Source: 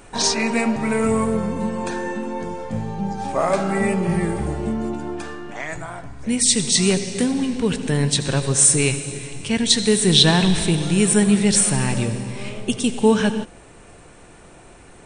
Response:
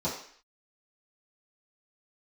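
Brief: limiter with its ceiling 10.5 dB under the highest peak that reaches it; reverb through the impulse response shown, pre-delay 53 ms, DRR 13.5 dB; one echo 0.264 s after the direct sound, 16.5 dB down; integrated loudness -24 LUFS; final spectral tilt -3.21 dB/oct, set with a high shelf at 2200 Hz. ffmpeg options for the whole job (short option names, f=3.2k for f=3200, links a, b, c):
-filter_complex "[0:a]highshelf=f=2.2k:g=7.5,alimiter=limit=-5dB:level=0:latency=1,aecho=1:1:264:0.15,asplit=2[a][b];[1:a]atrim=start_sample=2205,adelay=53[c];[b][c]afir=irnorm=-1:irlink=0,volume=-21.5dB[d];[a][d]amix=inputs=2:normalize=0,volume=-6.5dB"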